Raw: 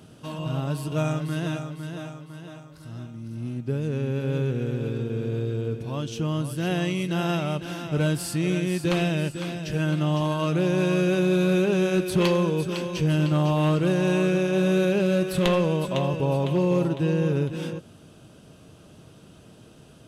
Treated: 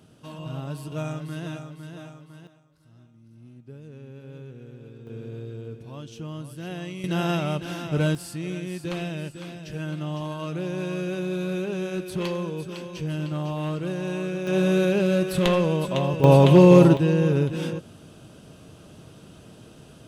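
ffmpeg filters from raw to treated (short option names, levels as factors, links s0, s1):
-af "asetnsamples=n=441:p=0,asendcmd='2.47 volume volume -16dB;5.07 volume volume -9dB;7.04 volume volume 0.5dB;8.15 volume volume -7dB;14.47 volume volume 0.5dB;16.24 volume volume 10dB;16.97 volume volume 2.5dB',volume=0.531"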